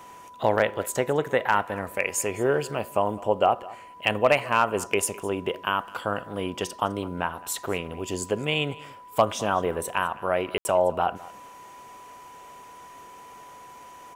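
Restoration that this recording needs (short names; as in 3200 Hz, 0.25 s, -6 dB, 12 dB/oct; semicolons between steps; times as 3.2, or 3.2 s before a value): clip repair -9 dBFS; notch 990 Hz, Q 30; room tone fill 10.58–10.65; inverse comb 0.208 s -20.5 dB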